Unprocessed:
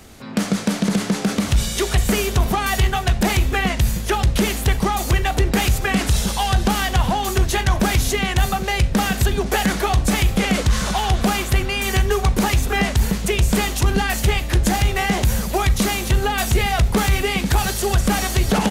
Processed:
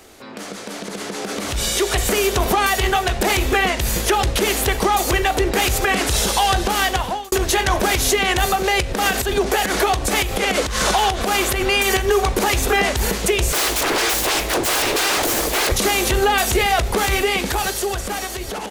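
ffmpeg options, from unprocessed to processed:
-filter_complex "[0:a]asettb=1/sr,asplit=3[a][b][c];[a]atrim=end=8.554[d];[b]atrim=start=8.55:end=12.09,asetpts=PTS-STARTPTS,afade=t=in:d=0.004:c=qsin,afade=t=out:st=3.536:d=0.004:c=qsin,acompressor=threshold=-19dB:ratio=4:attack=3.2:release=140:knee=1:detection=peak[e];[c]atrim=start=12.086[f];[d][e]acrossfade=d=0.004:c1=hsin:c2=qsin[g];[g][f]acrossfade=d=0.004:c1=qsin:c2=hsin,asettb=1/sr,asplit=3[h][i][j];[h]atrim=end=13.524[k];[i]atrim=start=13.52:end=15.72,asetpts=PTS-STARTPTS,afade=t=in:d=0.004:c=qsin,afade=t=out:st=2.196:d=0.004:c=qsin,aeval=exprs='0.0631*(abs(mod(val(0)/0.0631+3,4)-2)-1)':c=same[l];[j]atrim=start=15.716[m];[k][l]acrossfade=d=0.004:c1=hsin:c2=qsin[n];[n][m]acrossfade=d=0.004:c1=qsin:c2=hsin,asplit=2[o][p];[o]atrim=end=7.32,asetpts=PTS-STARTPTS,afade=t=out:st=6.49:d=0.83[q];[p]atrim=start=7.32,asetpts=PTS-STARTPTS,afade=t=in:d=0.004:c=hsin[r];[q][r]concat=n=2:v=0:a=1,lowshelf=f=260:t=q:w=1.5:g=-9,alimiter=limit=-18dB:level=0:latency=1:release=200,dynaudnorm=f=330:g=9:m=10dB"

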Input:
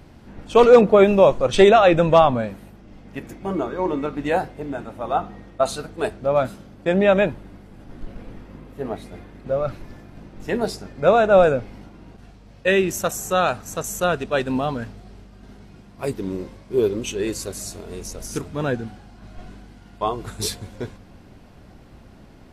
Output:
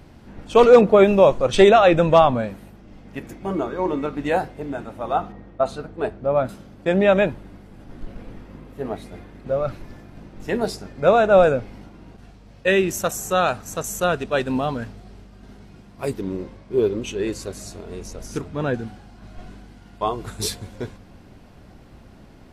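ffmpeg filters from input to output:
-filter_complex "[0:a]asettb=1/sr,asplit=3[a][b][c];[a]atrim=end=5.324[d];[b]atrim=start=5.32:end=6.49,asetpts=PTS-STARTPTS,afade=t=in:d=0.004:c=qsin,afade=t=out:st=1.166:d=0.004:c=qsin,lowpass=f=1.5k:p=1[e];[c]atrim=start=6.486[f];[d][e]acrossfade=d=0.004:c1=hsin:c2=qsin[g];[g][f]acrossfade=d=0.004:c1=qsin:c2=hsin,asettb=1/sr,asplit=3[h][i][j];[h]atrim=end=16.214[k];[i]atrim=start=16.21:end=18.74,asetpts=PTS-STARTPTS,afade=t=in:d=0.004:c=qsin,afade=t=out:st=2.526:d=0.004:c=qsin,lowpass=f=3.8k:p=1[l];[j]atrim=start=18.736[m];[k][l]acrossfade=d=0.004:c1=hsin:c2=qsin[n];[n][m]acrossfade=d=0.004:c1=qsin:c2=hsin"

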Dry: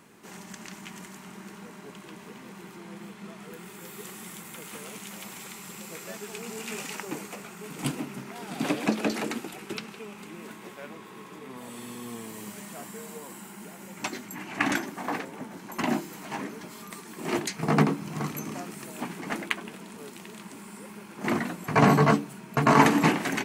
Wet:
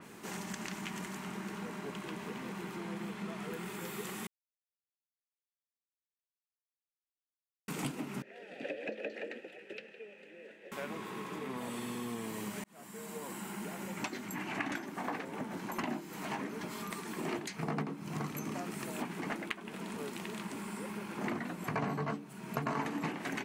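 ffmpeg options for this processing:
-filter_complex "[0:a]asettb=1/sr,asplit=3[a][b][c];[a]atrim=end=8.224[d];[b]atrim=start=8.22:end=10.72,asetpts=PTS-STARTPTS,afade=t=in:d=0.004:c=qsin,afade=t=out:st=2.496:d=0.004:c=qsin,asplit=3[e][f][g];[e]bandpass=f=530:t=q:w=8,volume=0dB[h];[f]bandpass=f=1.84k:t=q:w=8,volume=-6dB[i];[g]bandpass=f=2.48k:t=q:w=8,volume=-9dB[j];[h][i][j]amix=inputs=3:normalize=0[k];[c]atrim=start=10.716[l];[d][k]acrossfade=d=0.004:c1=hsin:c2=qsin[m];[m][l]acrossfade=d=0.004:c1=qsin:c2=hsin,asplit=4[n][o][p][q];[n]atrim=end=4.27,asetpts=PTS-STARTPTS,afade=t=out:st=4.266:d=0.004:c=hsin[r];[o]atrim=start=4.27:end=7.68,asetpts=PTS-STARTPTS,volume=0[s];[p]atrim=start=7.68:end=12.64,asetpts=PTS-STARTPTS,afade=t=in:d=0.004:c=hsin,afade=t=out:st=4.956:d=0.004:c=hsin[t];[q]atrim=start=12.64,asetpts=PTS-STARTPTS,afade=t=in:d=0.91[u];[r][s][t][u]concat=n=4:v=0:a=1,acompressor=threshold=-39dB:ratio=5,adynamicequalizer=threshold=0.001:dfrequency=4300:dqfactor=0.7:tfrequency=4300:tqfactor=0.7:attack=5:release=100:ratio=0.375:range=2.5:mode=cutabove:tftype=highshelf,volume=3.5dB"

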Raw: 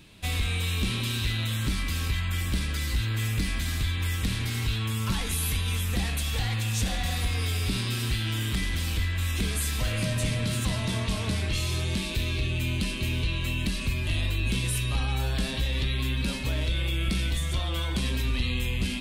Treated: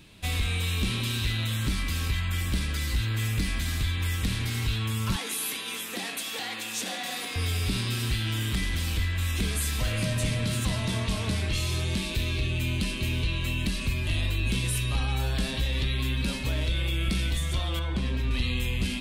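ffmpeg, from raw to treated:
-filter_complex "[0:a]asettb=1/sr,asplit=3[a][b][c];[a]atrim=end=5.164[d];[b]atrim=start=5.16:end=7.36,asetpts=PTS-STARTPTS,afade=t=in:d=0.004:c=qsin,afade=t=out:st=2.196:d=0.004:c=qsin,highpass=f=250:w=0.5412,highpass=f=250:w=1.3066[e];[c]atrim=start=7.356[f];[d][e]acrossfade=d=0.004:c1=hsin:c2=qsin[g];[g][f]acrossfade=d=0.004:c1=qsin:c2=hsin,asettb=1/sr,asplit=3[h][i][j];[h]atrim=end=17.794[k];[i]atrim=start=17.79:end=18.31,asetpts=PTS-STARTPTS,afade=t=in:d=0.004:c=qsin,afade=t=out:st=0.516:d=0.004:c=qsin,lowpass=f=1.9k:p=1[l];[j]atrim=start=18.306[m];[k][l]acrossfade=d=0.004:c1=hsin:c2=qsin[n];[n][m]acrossfade=d=0.004:c1=qsin:c2=hsin"

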